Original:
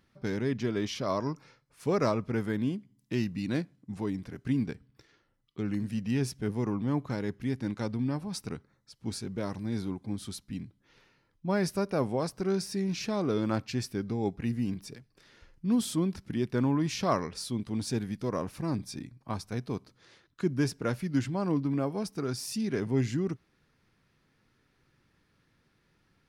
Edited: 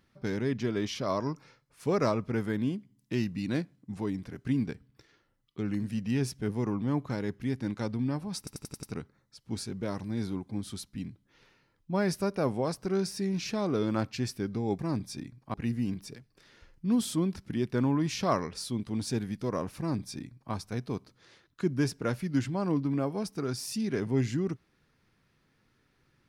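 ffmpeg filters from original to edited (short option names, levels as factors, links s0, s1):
-filter_complex "[0:a]asplit=8[s0][s1][s2][s3][s4][s5][s6][s7];[s0]atrim=end=8.472[s8];[s1]atrim=start=8.378:end=8.472[s9];[s2]atrim=start=8.378:end=8.472[s10];[s3]atrim=start=8.378:end=8.472[s11];[s4]atrim=start=8.378:end=8.472[s12];[s5]atrim=start=8.378:end=14.342[s13];[s6]atrim=start=18.578:end=19.332[s14];[s7]atrim=start=14.338[s15];[s8][s9]acrossfade=d=0.004:c1=hsin:c2=hsin[s16];[s16][s10]acrossfade=d=0.004:c1=hsin:c2=hsin[s17];[s17][s11]acrossfade=d=0.004:c1=hsin:c2=hsin[s18];[s18][s12]acrossfade=d=0.004:c1=hsin:c2=hsin[s19];[s19][s13]acrossfade=d=0.004:c1=hsin:c2=hsin[s20];[s20][s14]acrossfade=d=0.004:c1=hsin:c2=hsin[s21];[s21][s15]acrossfade=d=0.004:c1=hsin:c2=hsin"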